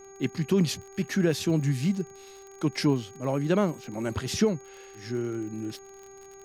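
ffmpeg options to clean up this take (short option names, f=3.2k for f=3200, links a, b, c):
-af "adeclick=t=4,bandreject=f=391.4:t=h:w=4,bandreject=f=782.8:t=h:w=4,bandreject=f=1.1742k:t=h:w=4,bandreject=f=1.5656k:t=h:w=4,bandreject=f=1.957k:t=h:w=4,bandreject=f=2.3484k:t=h:w=4,bandreject=f=6.6k:w=30,agate=range=-21dB:threshold=-40dB"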